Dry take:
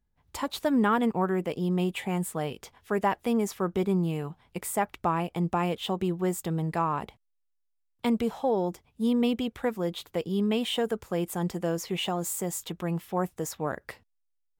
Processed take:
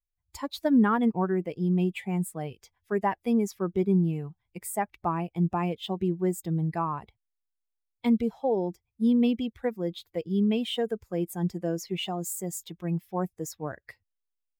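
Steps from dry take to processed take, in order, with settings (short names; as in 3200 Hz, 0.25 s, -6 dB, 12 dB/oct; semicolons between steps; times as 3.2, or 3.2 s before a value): per-bin expansion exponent 1.5; dynamic EQ 220 Hz, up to +5 dB, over -40 dBFS, Q 0.82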